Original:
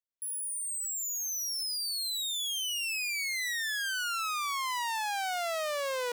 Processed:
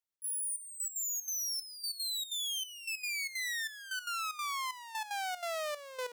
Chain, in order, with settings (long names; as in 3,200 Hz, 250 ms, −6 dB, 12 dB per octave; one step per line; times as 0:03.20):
brickwall limiter −31.5 dBFS, peak gain reduction 3.5 dB
gate pattern "xx.xxxx...x.x" 188 BPM −12 dB